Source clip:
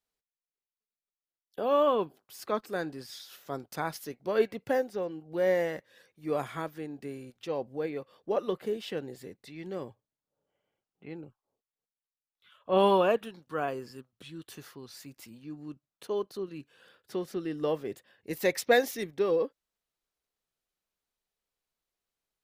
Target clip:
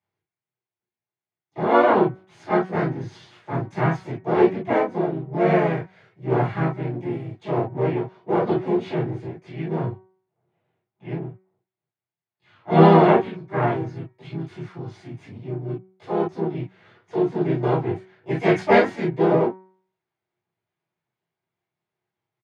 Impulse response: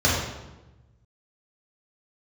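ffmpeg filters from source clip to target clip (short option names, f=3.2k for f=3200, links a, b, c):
-filter_complex "[0:a]aeval=exprs='if(lt(val(0),0),0.251*val(0),val(0))':c=same,highpass=120,lowpass=2.7k,asplit=4[a][b][c][d];[b]asetrate=37084,aresample=44100,atempo=1.18921,volume=-2dB[e];[c]asetrate=52444,aresample=44100,atempo=0.840896,volume=-7dB[f];[d]asetrate=55563,aresample=44100,atempo=0.793701,volume=-5dB[g];[a][e][f][g]amix=inputs=4:normalize=0,bandreject=f=187.7:t=h:w=4,bandreject=f=375.4:t=h:w=4,bandreject=f=563.1:t=h:w=4,bandreject=f=750.8:t=h:w=4,bandreject=f=938.5:t=h:w=4,bandreject=f=1.1262k:t=h:w=4,bandreject=f=1.3139k:t=h:w=4,bandreject=f=1.5016k:t=h:w=4,bandreject=f=1.6893k:t=h:w=4,bandreject=f=1.877k:t=h:w=4,bandreject=f=2.0647k:t=h:w=4,bandreject=f=2.2524k:t=h:w=4,bandreject=f=2.4401k:t=h:w=4[h];[1:a]atrim=start_sample=2205,atrim=end_sample=3969,asetrate=61740,aresample=44100[i];[h][i]afir=irnorm=-1:irlink=0,volume=-7dB"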